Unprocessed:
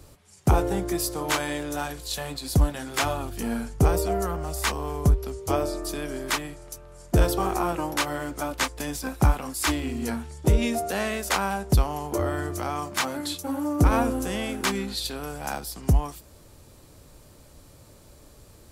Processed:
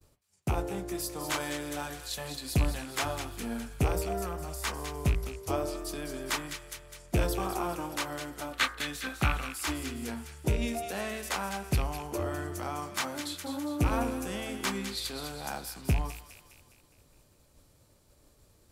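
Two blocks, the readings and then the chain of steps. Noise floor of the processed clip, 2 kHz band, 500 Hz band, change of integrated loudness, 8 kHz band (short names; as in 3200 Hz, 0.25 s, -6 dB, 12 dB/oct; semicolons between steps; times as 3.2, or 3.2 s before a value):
-64 dBFS, -4.5 dB, -7.5 dB, -6.5 dB, -6.0 dB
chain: rattling part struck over -18 dBFS, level -19 dBFS; spectral gain 8.53–9.5, 1100–4500 Hz +9 dB; de-hum 55.72 Hz, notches 39; vocal rider 2 s; expander -48 dBFS; on a send: thin delay 0.205 s, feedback 53%, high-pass 1700 Hz, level -7.5 dB; on the sum: gain -7.5 dB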